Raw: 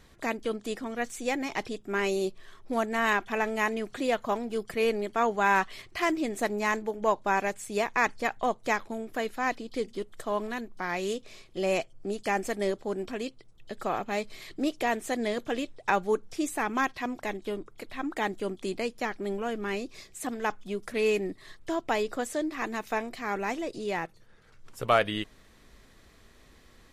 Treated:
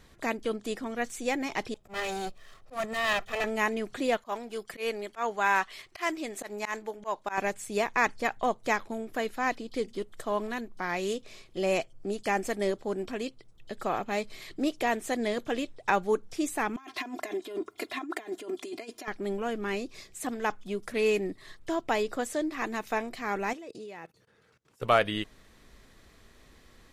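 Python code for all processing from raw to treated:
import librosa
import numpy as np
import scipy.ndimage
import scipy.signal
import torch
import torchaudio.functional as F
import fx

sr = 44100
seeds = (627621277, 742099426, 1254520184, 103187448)

y = fx.chain(x, sr, fx.lower_of_two(delay_ms=1.6),
    fx.auto_swell(attack_ms=116.0), at=(1.74, 3.44))
y = fx.chain(y, sr, fx.low_shelf(hz=370.0, db=-12.0),
    fx.auto_swell(attack_ms=104.0), at=(4.17, 7.38))
y = fx.chain(y, sr, fx.over_compress(threshold_db=-36.0, ratio=-0.5),
    fx.highpass(hz=260.0, slope=12),
    fx.comb(ms=2.9, depth=0.85), at=(16.76, 19.08))
y = fx.chain(y, sr, fx.highpass(hz=100.0, slope=12),
    fx.level_steps(step_db=22),
    fx.small_body(hz=(450.0, 2600.0), ring_ms=45, db=6), at=(23.53, 24.82))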